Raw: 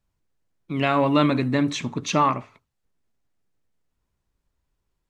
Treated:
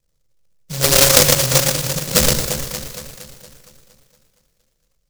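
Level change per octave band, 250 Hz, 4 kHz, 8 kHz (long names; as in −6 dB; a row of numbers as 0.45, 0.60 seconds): −3.5, +16.0, +24.0 decibels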